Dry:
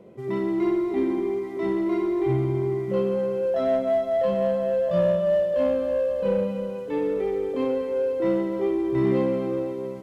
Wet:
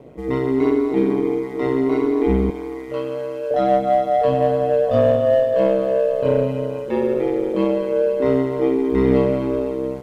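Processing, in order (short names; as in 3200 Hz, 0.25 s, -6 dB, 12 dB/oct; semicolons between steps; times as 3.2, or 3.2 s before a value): 2.5–3.51 HPF 1000 Hz 6 dB/oct; ring modulator 65 Hz; gain +8.5 dB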